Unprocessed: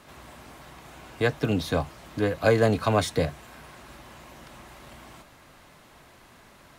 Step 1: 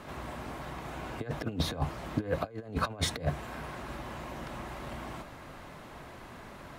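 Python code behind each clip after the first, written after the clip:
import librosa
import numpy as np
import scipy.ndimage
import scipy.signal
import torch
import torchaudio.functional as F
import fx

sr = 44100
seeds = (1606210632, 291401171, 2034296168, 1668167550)

y = fx.high_shelf(x, sr, hz=2600.0, db=-10.0)
y = fx.over_compress(y, sr, threshold_db=-31.0, ratio=-0.5)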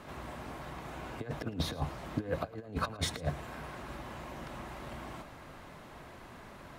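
y = fx.echo_feedback(x, sr, ms=111, feedback_pct=35, wet_db=-18.0)
y = y * librosa.db_to_amplitude(-3.0)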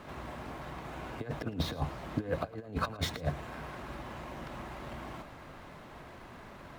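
y = scipy.ndimage.median_filter(x, 5, mode='constant')
y = y * librosa.db_to_amplitude(1.0)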